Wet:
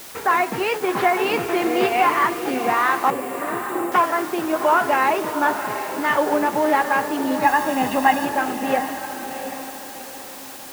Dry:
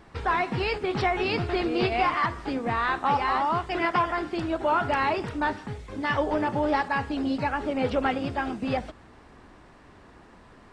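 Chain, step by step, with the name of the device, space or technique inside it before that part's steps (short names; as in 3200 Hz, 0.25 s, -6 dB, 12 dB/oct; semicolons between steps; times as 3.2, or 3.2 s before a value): wax cylinder (BPF 270–2700 Hz; wow and flutter; white noise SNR 18 dB); low shelf 98 Hz -5.5 dB; 3.1–3.92 Chebyshev band-stop 600–7300 Hz, order 5; 7.43–8.25 comb 1.1 ms, depth 99%; diffused feedback echo 0.727 s, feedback 40%, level -8.5 dB; gain +7 dB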